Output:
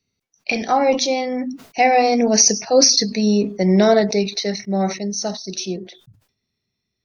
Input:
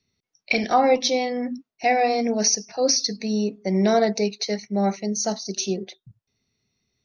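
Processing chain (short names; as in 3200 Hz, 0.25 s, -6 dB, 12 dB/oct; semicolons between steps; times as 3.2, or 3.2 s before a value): Doppler pass-by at 2.86, 12 m/s, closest 14 m; sustainer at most 130 dB/s; gain +7.5 dB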